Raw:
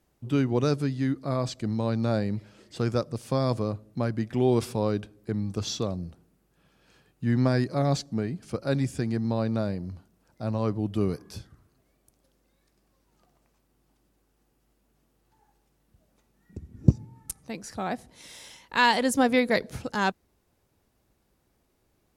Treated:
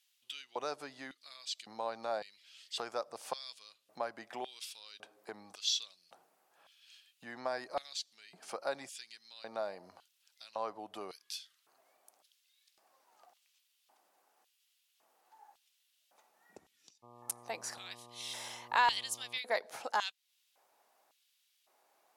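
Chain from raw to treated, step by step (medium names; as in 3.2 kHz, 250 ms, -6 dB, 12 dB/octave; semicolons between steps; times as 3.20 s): compression 2.5:1, threshold -35 dBFS, peak gain reduction 16 dB; LFO high-pass square 0.9 Hz 760–3200 Hz; 17.02–19.37 s: mains buzz 120 Hz, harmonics 10, -58 dBFS 0 dB/octave; trim +1 dB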